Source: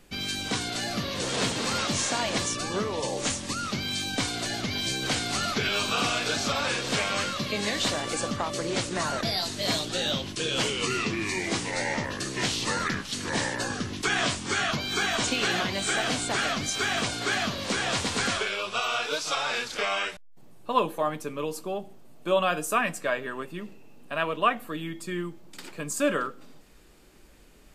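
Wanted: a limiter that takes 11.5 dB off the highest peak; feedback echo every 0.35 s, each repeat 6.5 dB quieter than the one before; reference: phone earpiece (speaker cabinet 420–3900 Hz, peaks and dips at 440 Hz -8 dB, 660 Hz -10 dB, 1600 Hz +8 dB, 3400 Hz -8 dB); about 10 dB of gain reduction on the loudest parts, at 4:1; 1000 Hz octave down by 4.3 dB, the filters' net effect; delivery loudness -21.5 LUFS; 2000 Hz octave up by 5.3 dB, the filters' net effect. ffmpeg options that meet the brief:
-af "equalizer=f=1k:t=o:g=-8,equalizer=f=2k:t=o:g=4.5,acompressor=threshold=-34dB:ratio=4,alimiter=level_in=8.5dB:limit=-24dB:level=0:latency=1,volume=-8.5dB,highpass=420,equalizer=f=440:t=q:w=4:g=-8,equalizer=f=660:t=q:w=4:g=-10,equalizer=f=1.6k:t=q:w=4:g=8,equalizer=f=3.4k:t=q:w=4:g=-8,lowpass=f=3.9k:w=0.5412,lowpass=f=3.9k:w=1.3066,aecho=1:1:350|700|1050|1400|1750|2100:0.473|0.222|0.105|0.0491|0.0231|0.0109,volume=19.5dB"

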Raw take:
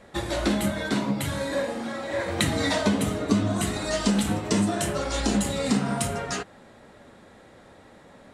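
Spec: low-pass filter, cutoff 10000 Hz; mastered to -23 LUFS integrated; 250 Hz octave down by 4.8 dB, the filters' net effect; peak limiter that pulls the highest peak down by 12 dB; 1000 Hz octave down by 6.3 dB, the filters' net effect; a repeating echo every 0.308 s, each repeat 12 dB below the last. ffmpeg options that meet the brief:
-af "lowpass=10k,equalizer=f=250:t=o:g=-6,equalizer=f=1k:t=o:g=-8.5,alimiter=limit=-21.5dB:level=0:latency=1,aecho=1:1:308|616|924:0.251|0.0628|0.0157,volume=8dB"

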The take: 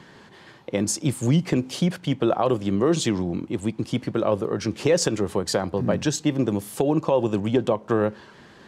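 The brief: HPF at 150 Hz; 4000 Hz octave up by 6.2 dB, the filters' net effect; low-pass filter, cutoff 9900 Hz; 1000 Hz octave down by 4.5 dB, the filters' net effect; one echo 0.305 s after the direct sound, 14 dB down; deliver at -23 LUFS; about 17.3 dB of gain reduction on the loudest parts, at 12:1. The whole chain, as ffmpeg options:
-af "highpass=150,lowpass=9.9k,equalizer=f=1k:t=o:g=-6.5,equalizer=f=4k:t=o:g=8.5,acompressor=threshold=-35dB:ratio=12,aecho=1:1:305:0.2,volume=16.5dB"

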